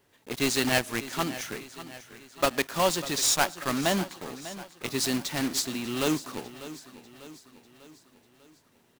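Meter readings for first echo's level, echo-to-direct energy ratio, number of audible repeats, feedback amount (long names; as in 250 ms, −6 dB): −15.0 dB, −13.5 dB, 4, 52%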